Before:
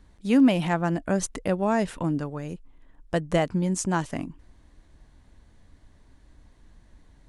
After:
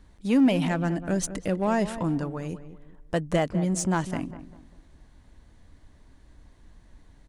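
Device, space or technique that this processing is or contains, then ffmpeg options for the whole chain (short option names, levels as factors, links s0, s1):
parallel distortion: -filter_complex "[0:a]asettb=1/sr,asplit=3[s0][s1][s2];[s0]atrim=end=0.684[s3];[s1]atrim=start=0.68:end=1.62,asetpts=PTS-STARTPTS,afade=t=in:d=0.004:c=qsin,afade=t=out:st=0.936:d=0.004:c=qsin,equalizer=f=940:t=o:w=1.2:g=-5.5[s4];[s2]atrim=start=1.616[s5];[s3][s4]acrossfade=d=0.004:c1=hsin:c2=qsin[s6];[s6][s5]acrossfade=d=0.004:c1=qsin:c2=hsin,asplit=2[s7][s8];[s8]asoftclip=type=hard:threshold=0.0501,volume=0.562[s9];[s7][s9]amix=inputs=2:normalize=0,asplit=2[s10][s11];[s11]adelay=198,lowpass=f=1500:p=1,volume=0.251,asplit=2[s12][s13];[s13]adelay=198,lowpass=f=1500:p=1,volume=0.36,asplit=2[s14][s15];[s15]adelay=198,lowpass=f=1500:p=1,volume=0.36,asplit=2[s16][s17];[s17]adelay=198,lowpass=f=1500:p=1,volume=0.36[s18];[s10][s12][s14][s16][s18]amix=inputs=5:normalize=0,volume=0.708"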